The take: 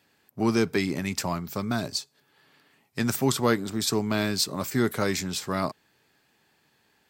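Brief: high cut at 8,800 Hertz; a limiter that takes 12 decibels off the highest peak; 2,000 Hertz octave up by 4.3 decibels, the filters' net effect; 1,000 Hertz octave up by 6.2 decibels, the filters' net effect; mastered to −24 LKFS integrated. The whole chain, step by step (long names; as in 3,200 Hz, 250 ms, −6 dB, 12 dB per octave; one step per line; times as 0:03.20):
low-pass filter 8,800 Hz
parametric band 1,000 Hz +7 dB
parametric band 2,000 Hz +3 dB
level +5.5 dB
brickwall limiter −12 dBFS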